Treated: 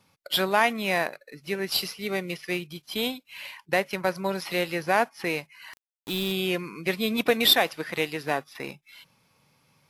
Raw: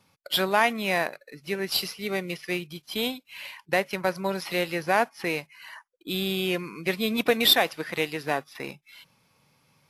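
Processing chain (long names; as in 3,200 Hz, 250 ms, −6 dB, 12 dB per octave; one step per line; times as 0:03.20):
0:05.73–0:06.32: centre clipping without the shift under −34.5 dBFS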